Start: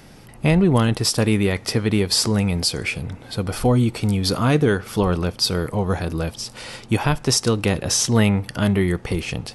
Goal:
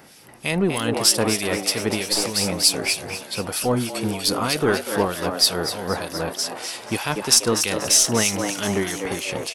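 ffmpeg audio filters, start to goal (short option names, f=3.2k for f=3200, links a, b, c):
-filter_complex "[0:a]highpass=f=400:p=1,highshelf=f=8.7k:g=9.5,asplit=2[a][b];[b]aeval=exprs='clip(val(0),-1,0.0531)':c=same,volume=-8dB[c];[a][c]amix=inputs=2:normalize=0,asplit=9[d][e][f][g][h][i][j][k][l];[e]adelay=242,afreqshift=92,volume=-6.5dB[m];[f]adelay=484,afreqshift=184,volume=-10.8dB[n];[g]adelay=726,afreqshift=276,volume=-15.1dB[o];[h]adelay=968,afreqshift=368,volume=-19.4dB[p];[i]adelay=1210,afreqshift=460,volume=-23.7dB[q];[j]adelay=1452,afreqshift=552,volume=-28dB[r];[k]adelay=1694,afreqshift=644,volume=-32.3dB[s];[l]adelay=1936,afreqshift=736,volume=-36.6dB[t];[d][m][n][o][p][q][r][s][t]amix=inputs=9:normalize=0,acrossover=split=2000[u][v];[u]aeval=exprs='val(0)*(1-0.7/2+0.7/2*cos(2*PI*3.2*n/s))':c=same[w];[v]aeval=exprs='val(0)*(1-0.7/2-0.7/2*cos(2*PI*3.2*n/s))':c=same[x];[w][x]amix=inputs=2:normalize=0"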